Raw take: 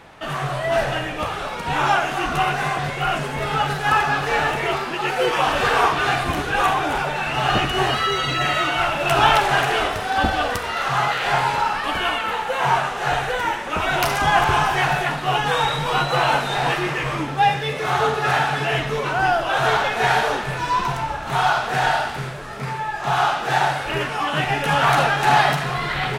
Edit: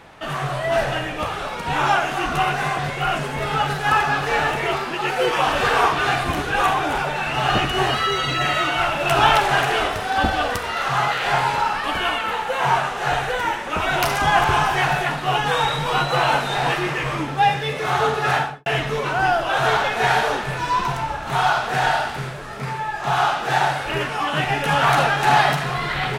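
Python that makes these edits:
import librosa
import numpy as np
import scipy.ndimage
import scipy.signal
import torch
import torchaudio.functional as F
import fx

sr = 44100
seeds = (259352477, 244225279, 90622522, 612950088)

y = fx.studio_fade_out(x, sr, start_s=18.33, length_s=0.33)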